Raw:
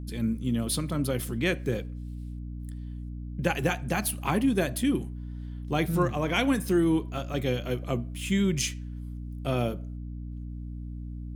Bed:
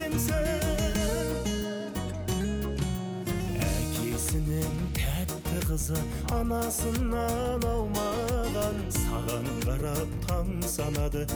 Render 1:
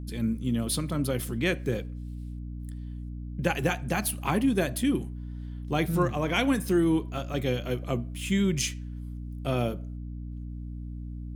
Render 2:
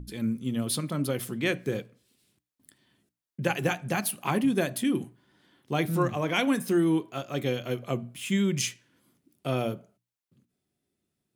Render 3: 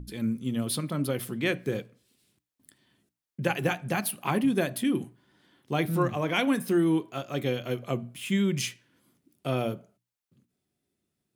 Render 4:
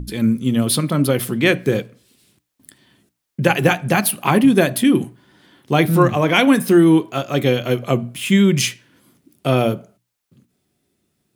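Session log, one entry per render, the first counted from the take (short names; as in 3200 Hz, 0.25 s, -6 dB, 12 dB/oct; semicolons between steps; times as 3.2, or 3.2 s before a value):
nothing audible
notches 60/120/180/240/300 Hz
dynamic EQ 6800 Hz, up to -5 dB, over -52 dBFS, Q 1.7
gain +12 dB; limiter -1 dBFS, peak gain reduction 1 dB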